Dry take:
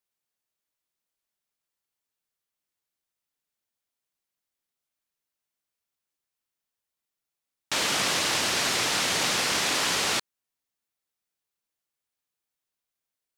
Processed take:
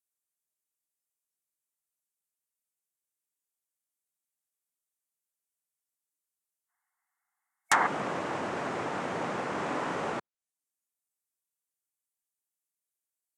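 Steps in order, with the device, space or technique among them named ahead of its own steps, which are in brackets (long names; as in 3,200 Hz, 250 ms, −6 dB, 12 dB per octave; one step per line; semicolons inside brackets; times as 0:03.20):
budget condenser microphone (high-pass filter 120 Hz; high shelf with overshoot 5,900 Hz +10 dB, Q 1.5)
treble cut that deepens with the level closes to 1,100 Hz, closed at −20.5 dBFS
0:06.69–0:07.87: gain on a spectral selection 690–2,200 Hz +12 dB
noise reduction from a noise print of the clip's start 11 dB
0:09.54–0:10.11: double-tracking delay 45 ms −6 dB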